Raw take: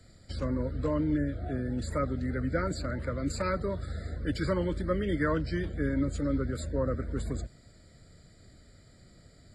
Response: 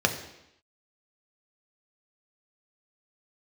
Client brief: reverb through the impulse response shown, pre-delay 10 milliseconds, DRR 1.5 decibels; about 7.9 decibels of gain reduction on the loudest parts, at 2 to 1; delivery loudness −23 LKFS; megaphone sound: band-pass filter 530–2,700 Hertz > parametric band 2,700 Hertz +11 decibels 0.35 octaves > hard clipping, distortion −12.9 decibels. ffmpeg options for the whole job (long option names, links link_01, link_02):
-filter_complex "[0:a]acompressor=threshold=-39dB:ratio=2,asplit=2[link_01][link_02];[1:a]atrim=start_sample=2205,adelay=10[link_03];[link_02][link_03]afir=irnorm=-1:irlink=0,volume=-14.5dB[link_04];[link_01][link_04]amix=inputs=2:normalize=0,highpass=530,lowpass=2700,equalizer=frequency=2700:width_type=o:width=0.35:gain=11,asoftclip=type=hard:threshold=-36dB,volume=21dB"